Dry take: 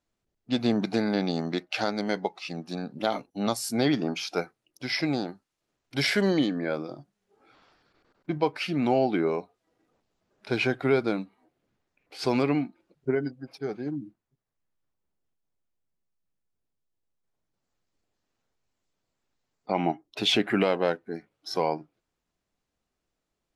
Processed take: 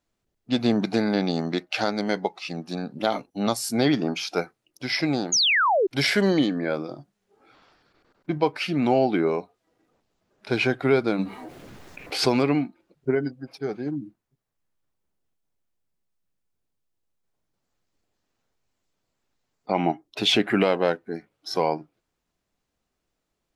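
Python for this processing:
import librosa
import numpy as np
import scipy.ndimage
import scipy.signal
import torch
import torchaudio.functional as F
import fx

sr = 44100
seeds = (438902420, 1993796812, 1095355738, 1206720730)

y = fx.spec_paint(x, sr, seeds[0], shape='fall', start_s=5.32, length_s=0.55, low_hz=350.0, high_hz=7000.0, level_db=-23.0)
y = fx.env_flatten(y, sr, amount_pct=50, at=(11.18, 12.28), fade=0.02)
y = F.gain(torch.from_numpy(y), 3.0).numpy()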